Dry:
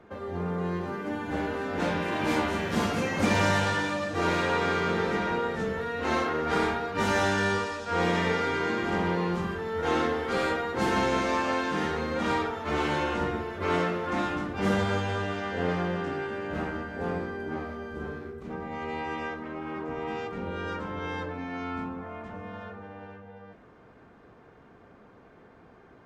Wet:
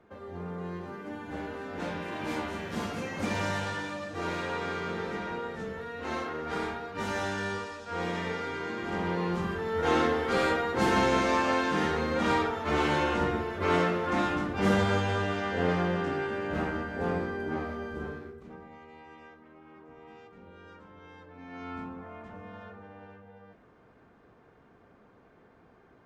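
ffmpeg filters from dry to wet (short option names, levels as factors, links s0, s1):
-af "volume=4.47,afade=t=in:st=8.74:d=1.02:silence=0.398107,afade=t=out:st=17.85:d=0.65:silence=0.298538,afade=t=out:st=18.5:d=0.37:silence=0.421697,afade=t=in:st=21.27:d=0.45:silence=0.251189"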